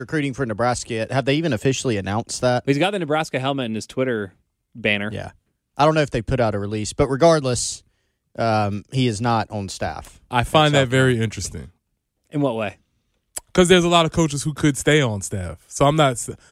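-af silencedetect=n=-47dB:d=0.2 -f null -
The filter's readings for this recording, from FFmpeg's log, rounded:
silence_start: 4.32
silence_end: 4.75 | silence_duration: 0.43
silence_start: 5.36
silence_end: 5.77 | silence_duration: 0.41
silence_start: 7.81
silence_end: 8.35 | silence_duration: 0.54
silence_start: 11.70
silence_end: 12.27 | silence_duration: 0.57
silence_start: 12.75
silence_end: 13.35 | silence_duration: 0.60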